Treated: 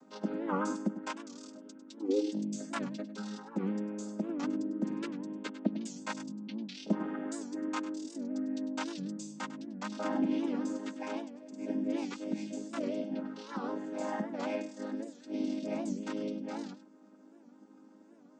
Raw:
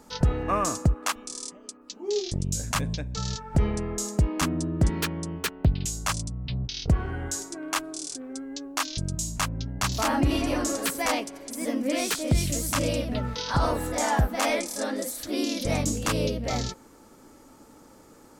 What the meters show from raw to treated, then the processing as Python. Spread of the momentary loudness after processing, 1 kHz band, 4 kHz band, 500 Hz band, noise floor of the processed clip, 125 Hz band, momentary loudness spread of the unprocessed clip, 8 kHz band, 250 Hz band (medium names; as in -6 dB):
8 LU, -11.5 dB, -16.5 dB, -8.0 dB, -58 dBFS, -19.5 dB, 8 LU, -19.5 dB, -3.5 dB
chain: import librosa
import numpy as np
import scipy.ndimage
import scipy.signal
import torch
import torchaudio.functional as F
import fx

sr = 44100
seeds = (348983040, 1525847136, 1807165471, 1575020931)

p1 = fx.chord_vocoder(x, sr, chord='major triad', root=56)
p2 = p1 + fx.echo_single(p1, sr, ms=100, db=-13.5, dry=0)
p3 = fx.rider(p2, sr, range_db=10, speed_s=2.0)
p4 = fx.record_warp(p3, sr, rpm=78.0, depth_cents=160.0)
y = F.gain(torch.from_numpy(p4), -8.0).numpy()